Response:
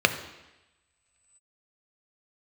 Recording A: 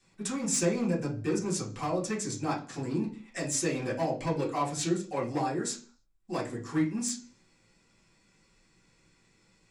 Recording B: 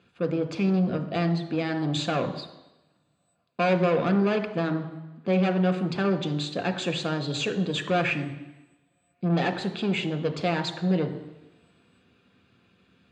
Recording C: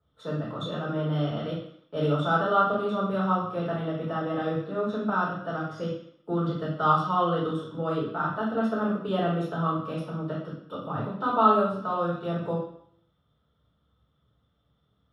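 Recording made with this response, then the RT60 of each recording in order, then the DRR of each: B; 0.40 s, 1.0 s, 0.65 s; -6.5 dB, 7.0 dB, -7.5 dB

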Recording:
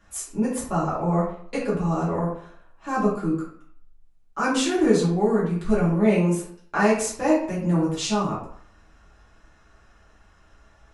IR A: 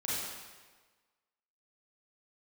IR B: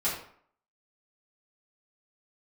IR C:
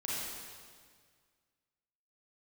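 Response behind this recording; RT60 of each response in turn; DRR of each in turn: B; 1.4 s, 0.60 s, 1.8 s; -8.5 dB, -10.0 dB, -7.5 dB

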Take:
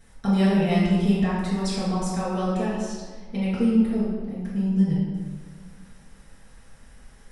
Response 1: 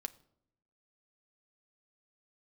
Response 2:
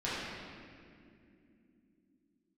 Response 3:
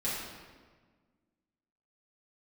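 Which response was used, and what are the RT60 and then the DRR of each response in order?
3; 0.70 s, no single decay rate, 1.5 s; 8.0 dB, -11.0 dB, -9.5 dB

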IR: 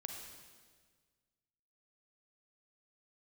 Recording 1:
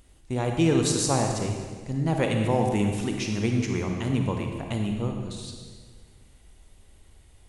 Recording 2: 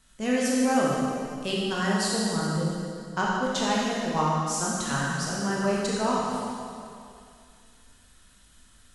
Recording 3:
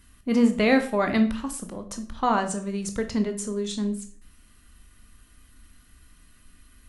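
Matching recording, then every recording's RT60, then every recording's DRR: 1; 1.6 s, 2.4 s, 0.45 s; 2.5 dB, -5.0 dB, 6.5 dB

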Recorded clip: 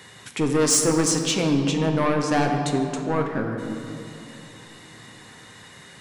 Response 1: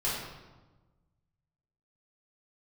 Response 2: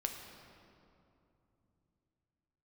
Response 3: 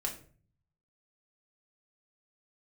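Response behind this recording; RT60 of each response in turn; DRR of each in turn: 2; 1.2 s, 2.9 s, 0.45 s; -9.5 dB, 2.5 dB, -1.0 dB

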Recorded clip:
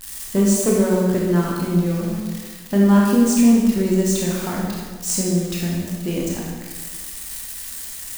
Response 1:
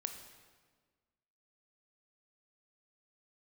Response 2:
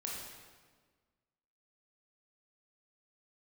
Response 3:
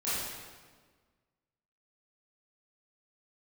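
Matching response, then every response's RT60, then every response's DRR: 2; 1.5 s, 1.5 s, 1.5 s; 6.0 dB, -3.5 dB, -12.5 dB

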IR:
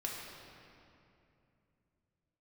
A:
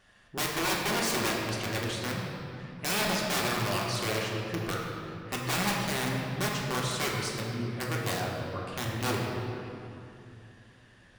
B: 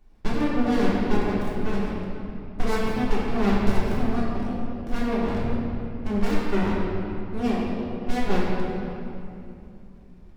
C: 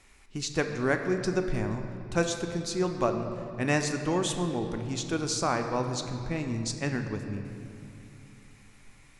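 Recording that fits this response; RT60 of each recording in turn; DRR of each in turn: A; 2.7 s, 2.7 s, 2.8 s; -3.0 dB, -7.5 dB, 5.0 dB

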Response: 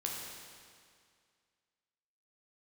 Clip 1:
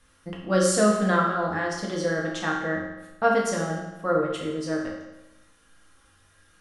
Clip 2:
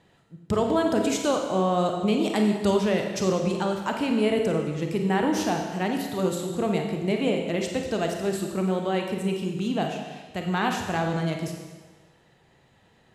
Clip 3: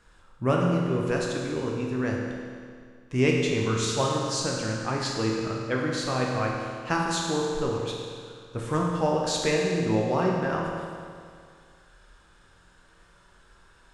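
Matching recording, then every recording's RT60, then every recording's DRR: 3; 1.0 s, 1.3 s, 2.1 s; -3.0 dB, 2.5 dB, -2.0 dB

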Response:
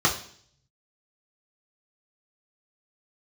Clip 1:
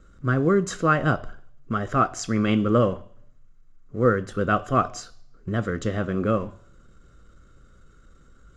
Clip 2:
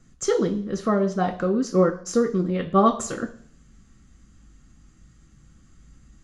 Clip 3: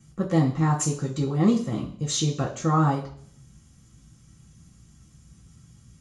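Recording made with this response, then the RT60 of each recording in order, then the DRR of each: 3; 0.55 s, 0.55 s, 0.55 s; 10.0 dB, 2.0 dB, -4.0 dB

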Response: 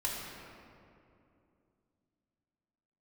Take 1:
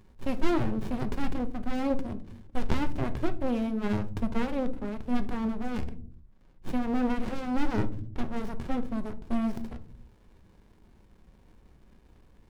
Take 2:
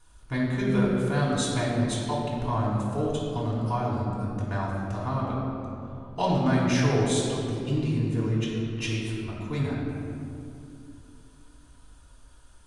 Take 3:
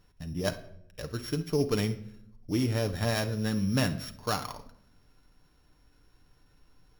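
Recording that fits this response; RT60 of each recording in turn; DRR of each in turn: 2; no single decay rate, 2.7 s, no single decay rate; 9.0 dB, -6.0 dB, 6.5 dB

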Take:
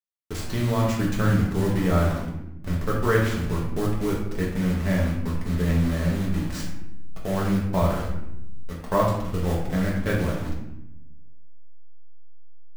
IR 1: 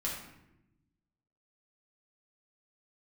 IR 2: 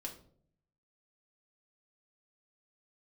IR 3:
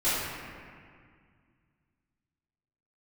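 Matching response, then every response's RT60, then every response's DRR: 1; 0.90 s, 0.55 s, 2.0 s; -5.0 dB, -0.5 dB, -14.5 dB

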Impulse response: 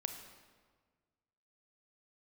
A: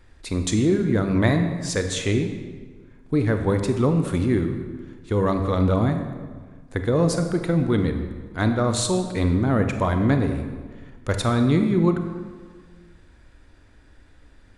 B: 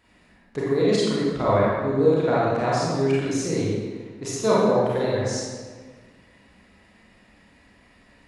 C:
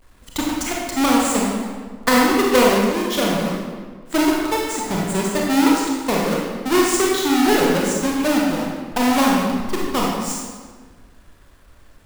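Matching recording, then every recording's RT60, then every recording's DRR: A; 1.6 s, 1.6 s, 1.6 s; 6.0 dB, -7.5 dB, -3.0 dB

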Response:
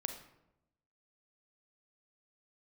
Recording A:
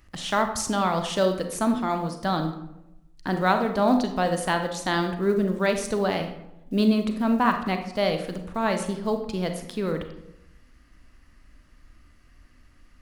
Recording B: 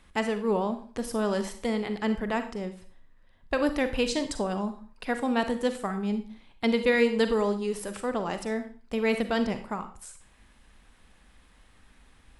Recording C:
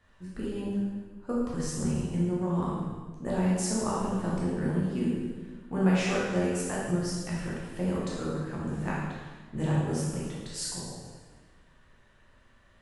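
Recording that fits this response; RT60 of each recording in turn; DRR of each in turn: A; 0.90 s, 0.40 s, 1.4 s; 6.0 dB, 8.5 dB, -6.5 dB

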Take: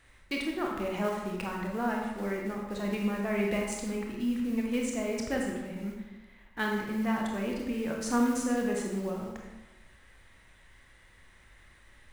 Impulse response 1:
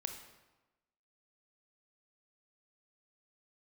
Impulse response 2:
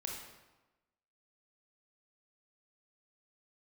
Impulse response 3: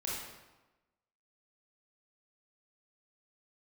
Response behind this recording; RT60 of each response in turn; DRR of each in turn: 2; 1.1 s, 1.1 s, 1.1 s; 5.0 dB, -0.5 dB, -6.0 dB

